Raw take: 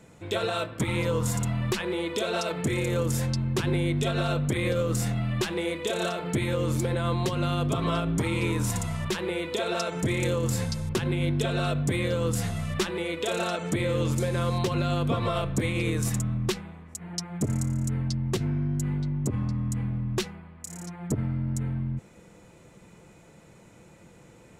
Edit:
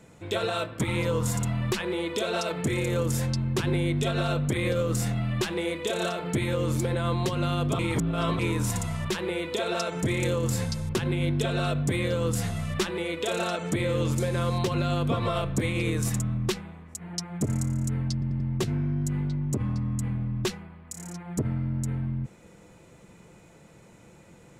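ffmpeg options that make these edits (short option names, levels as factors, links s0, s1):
-filter_complex "[0:a]asplit=6[s0][s1][s2][s3][s4][s5];[s0]atrim=end=7.792[s6];[s1]atrim=start=7.788:end=8.392,asetpts=PTS-STARTPTS,areverse[s7];[s2]atrim=start=8.388:end=18.222[s8];[s3]atrim=start=18.128:end=18.222[s9];[s4]atrim=start=18.128:end=18.222[s10];[s5]atrim=start=18.128[s11];[s6][s7]acrossfade=d=0.004:c1=hsin:c2=hsin[s12];[s12][s8]acrossfade=d=0.004:c1=hsin:c2=hsin[s13];[s13][s9]acrossfade=d=0.004:c1=hsin:c2=hsin[s14];[s14][s10]acrossfade=d=0.004:c1=hsin:c2=hsin[s15];[s15][s11]acrossfade=d=0.004:c1=hsin:c2=hsin"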